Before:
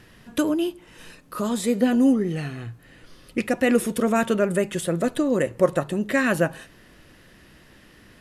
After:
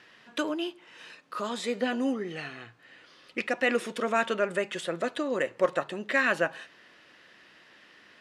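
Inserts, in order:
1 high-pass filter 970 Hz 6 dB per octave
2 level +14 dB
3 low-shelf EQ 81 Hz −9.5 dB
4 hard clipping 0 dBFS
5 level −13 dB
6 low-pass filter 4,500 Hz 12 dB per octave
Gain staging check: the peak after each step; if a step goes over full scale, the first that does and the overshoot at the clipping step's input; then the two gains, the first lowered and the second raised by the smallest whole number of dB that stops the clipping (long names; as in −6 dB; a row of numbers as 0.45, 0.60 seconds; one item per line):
−11.0, +3.0, +3.0, 0.0, −13.0, −13.0 dBFS
step 2, 3.0 dB
step 2 +11 dB, step 5 −10 dB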